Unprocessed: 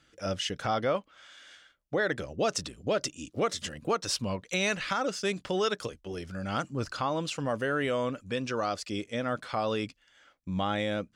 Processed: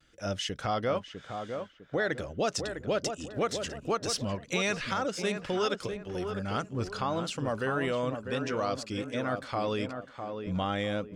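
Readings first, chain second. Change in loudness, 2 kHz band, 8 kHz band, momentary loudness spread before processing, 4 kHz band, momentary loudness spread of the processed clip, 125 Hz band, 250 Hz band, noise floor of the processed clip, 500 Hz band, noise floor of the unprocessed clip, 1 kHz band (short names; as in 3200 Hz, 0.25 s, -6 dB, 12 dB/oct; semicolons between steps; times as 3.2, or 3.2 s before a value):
-1.0 dB, -1.0 dB, -1.5 dB, 7 LU, -1.5 dB, 6 LU, +1.0 dB, 0.0 dB, -54 dBFS, -0.5 dB, -68 dBFS, -0.5 dB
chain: low shelf 61 Hz +9.5 dB; vibrato 1 Hz 54 cents; on a send: tape echo 0.652 s, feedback 42%, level -5 dB, low-pass 1300 Hz; on the sum: gain -1.5 dB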